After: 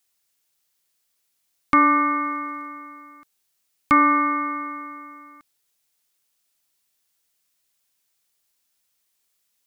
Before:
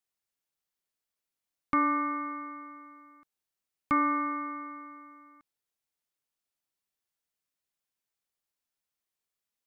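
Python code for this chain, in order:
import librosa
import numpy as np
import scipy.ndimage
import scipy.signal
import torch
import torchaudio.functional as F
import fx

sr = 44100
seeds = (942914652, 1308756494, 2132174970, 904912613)

y = fx.high_shelf(x, sr, hz=2400.0, db=9.0)
y = fx.dmg_crackle(y, sr, seeds[0], per_s=98.0, level_db=-59.0, at=(2.2, 2.66), fade=0.02)
y = F.gain(torch.from_numpy(y), 8.5).numpy()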